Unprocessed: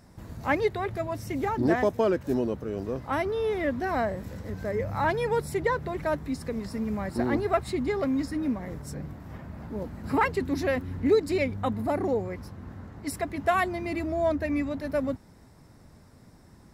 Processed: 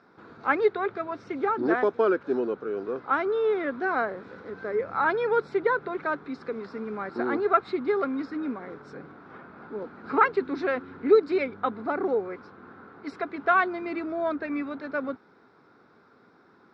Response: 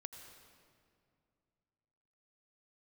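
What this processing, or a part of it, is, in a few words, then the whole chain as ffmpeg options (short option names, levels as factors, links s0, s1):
phone earpiece: -af "highpass=400,equalizer=f=410:t=q:w=4:g=4,equalizer=f=610:t=q:w=4:g=-9,equalizer=f=910:t=q:w=4:g=-4,equalizer=f=1400:t=q:w=4:g=9,equalizer=f=1900:t=q:w=4:g=-8,equalizer=f=2900:t=q:w=4:g=-9,lowpass=f=3500:w=0.5412,lowpass=f=3500:w=1.3066,volume=1.58"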